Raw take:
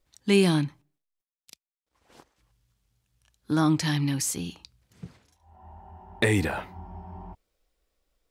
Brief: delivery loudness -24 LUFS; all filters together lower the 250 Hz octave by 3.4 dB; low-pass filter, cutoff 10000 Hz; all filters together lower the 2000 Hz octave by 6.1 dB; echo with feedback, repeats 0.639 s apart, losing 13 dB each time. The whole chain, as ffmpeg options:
-af "lowpass=10k,equalizer=f=250:t=o:g=-5,equalizer=f=2k:t=o:g=-7.5,aecho=1:1:639|1278|1917:0.224|0.0493|0.0108,volume=6dB"

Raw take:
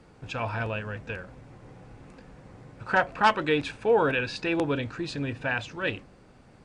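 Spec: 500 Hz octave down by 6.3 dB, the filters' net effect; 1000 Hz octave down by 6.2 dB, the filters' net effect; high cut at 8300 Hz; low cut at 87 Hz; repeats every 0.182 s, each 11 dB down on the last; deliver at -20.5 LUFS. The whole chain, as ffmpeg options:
-af "highpass=87,lowpass=8.3k,equalizer=f=500:t=o:g=-6,equalizer=f=1k:t=o:g=-6,aecho=1:1:182|364|546:0.282|0.0789|0.0221,volume=10.5dB"

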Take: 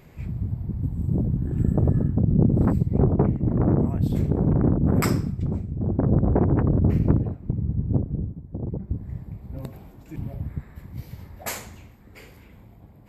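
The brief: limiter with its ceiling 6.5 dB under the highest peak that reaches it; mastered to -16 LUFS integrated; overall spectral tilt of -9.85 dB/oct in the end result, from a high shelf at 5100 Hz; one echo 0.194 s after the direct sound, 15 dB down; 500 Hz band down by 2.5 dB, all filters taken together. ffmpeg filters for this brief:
-af "equalizer=f=500:t=o:g=-3.5,highshelf=f=5.1k:g=5.5,alimiter=limit=-13dB:level=0:latency=1,aecho=1:1:194:0.178,volume=9dB"

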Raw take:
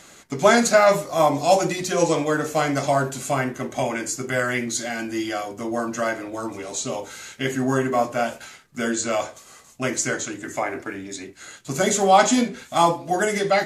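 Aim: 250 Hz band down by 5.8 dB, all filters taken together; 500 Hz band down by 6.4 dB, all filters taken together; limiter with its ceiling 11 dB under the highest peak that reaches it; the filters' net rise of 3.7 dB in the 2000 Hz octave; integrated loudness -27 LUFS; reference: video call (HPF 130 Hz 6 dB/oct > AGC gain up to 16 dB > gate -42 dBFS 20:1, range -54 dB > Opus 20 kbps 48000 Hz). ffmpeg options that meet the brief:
-af "equalizer=f=250:t=o:g=-3.5,equalizer=f=500:t=o:g=-8,equalizer=f=2k:t=o:g=5.5,alimiter=limit=-12.5dB:level=0:latency=1,highpass=f=130:p=1,dynaudnorm=m=16dB,agate=range=-54dB:threshold=-42dB:ratio=20" -ar 48000 -c:a libopus -b:a 20k

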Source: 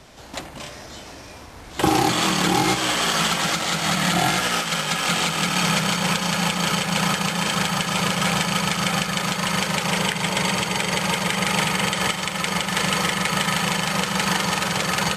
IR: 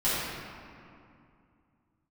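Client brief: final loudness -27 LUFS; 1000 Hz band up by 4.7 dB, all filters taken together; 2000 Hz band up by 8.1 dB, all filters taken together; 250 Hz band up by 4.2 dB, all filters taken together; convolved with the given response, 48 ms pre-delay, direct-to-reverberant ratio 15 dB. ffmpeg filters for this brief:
-filter_complex "[0:a]equalizer=f=250:t=o:g=6.5,equalizer=f=1k:t=o:g=3,equalizer=f=2k:t=o:g=9,asplit=2[a][b];[1:a]atrim=start_sample=2205,adelay=48[c];[b][c]afir=irnorm=-1:irlink=0,volume=-27.5dB[d];[a][d]amix=inputs=2:normalize=0,volume=-11.5dB"

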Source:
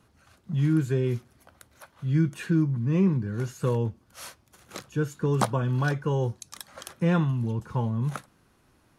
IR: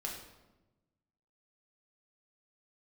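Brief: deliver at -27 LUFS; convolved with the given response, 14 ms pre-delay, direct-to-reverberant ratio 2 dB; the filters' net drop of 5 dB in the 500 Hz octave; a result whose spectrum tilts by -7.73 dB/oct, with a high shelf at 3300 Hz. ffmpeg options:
-filter_complex "[0:a]equalizer=f=500:t=o:g=-6.5,highshelf=f=3.3k:g=-4,asplit=2[a][b];[1:a]atrim=start_sample=2205,adelay=14[c];[b][c]afir=irnorm=-1:irlink=0,volume=-2.5dB[d];[a][d]amix=inputs=2:normalize=0,volume=-1.5dB"

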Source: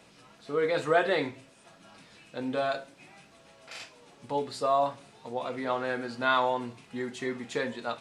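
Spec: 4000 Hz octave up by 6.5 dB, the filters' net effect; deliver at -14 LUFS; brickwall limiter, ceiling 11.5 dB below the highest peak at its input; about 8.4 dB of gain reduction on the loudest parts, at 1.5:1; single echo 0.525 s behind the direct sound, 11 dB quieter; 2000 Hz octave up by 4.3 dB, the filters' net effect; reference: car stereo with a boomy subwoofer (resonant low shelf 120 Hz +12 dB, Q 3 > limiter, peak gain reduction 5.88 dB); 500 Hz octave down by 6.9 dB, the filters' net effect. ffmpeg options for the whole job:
-af "equalizer=f=500:t=o:g=-8.5,equalizer=f=2k:t=o:g=5.5,equalizer=f=4k:t=o:g=6,acompressor=threshold=-43dB:ratio=1.5,alimiter=level_in=5dB:limit=-24dB:level=0:latency=1,volume=-5dB,lowshelf=f=120:t=q:w=3:g=12,aecho=1:1:525:0.282,volume=29.5dB,alimiter=limit=-4dB:level=0:latency=1"

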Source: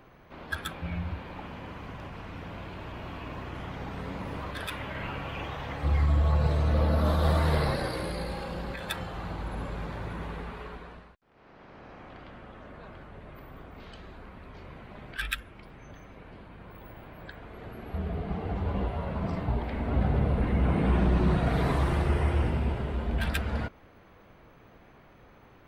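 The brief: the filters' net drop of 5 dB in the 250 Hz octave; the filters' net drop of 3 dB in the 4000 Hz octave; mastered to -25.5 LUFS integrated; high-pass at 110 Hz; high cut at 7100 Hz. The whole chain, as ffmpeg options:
-af "highpass=110,lowpass=7.1k,equalizer=f=250:t=o:g=-7,equalizer=f=4k:t=o:g=-3.5,volume=9.5dB"

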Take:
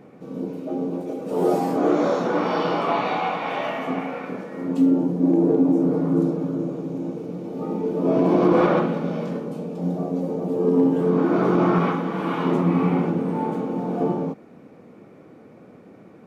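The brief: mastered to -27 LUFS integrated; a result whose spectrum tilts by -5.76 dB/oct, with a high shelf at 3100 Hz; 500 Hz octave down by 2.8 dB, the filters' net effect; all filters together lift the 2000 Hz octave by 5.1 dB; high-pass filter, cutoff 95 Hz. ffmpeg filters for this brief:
-af "highpass=95,equalizer=f=500:t=o:g=-4,equalizer=f=2k:t=o:g=5.5,highshelf=f=3.1k:g=4.5,volume=-3.5dB"

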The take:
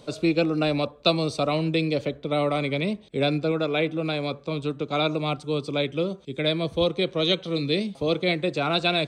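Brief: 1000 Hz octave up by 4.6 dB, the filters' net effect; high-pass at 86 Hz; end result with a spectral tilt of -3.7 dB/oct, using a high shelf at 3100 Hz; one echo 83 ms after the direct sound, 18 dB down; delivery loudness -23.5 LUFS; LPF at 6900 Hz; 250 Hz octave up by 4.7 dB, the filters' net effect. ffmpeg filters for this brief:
-af "highpass=86,lowpass=6.9k,equalizer=f=250:t=o:g=6.5,equalizer=f=1k:t=o:g=5.5,highshelf=f=3.1k:g=7.5,aecho=1:1:83:0.126,volume=-2dB"

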